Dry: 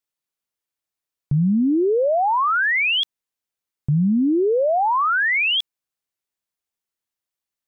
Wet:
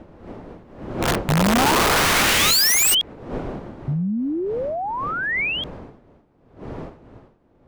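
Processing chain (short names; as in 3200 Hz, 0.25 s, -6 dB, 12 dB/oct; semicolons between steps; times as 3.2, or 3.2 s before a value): wind noise 460 Hz -28 dBFS; Doppler pass-by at 2.04, 8 m/s, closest 8 m; dynamic EQ 2200 Hz, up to +6 dB, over -37 dBFS, Q 1.4; wrapped overs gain 15.5 dB; gain +2 dB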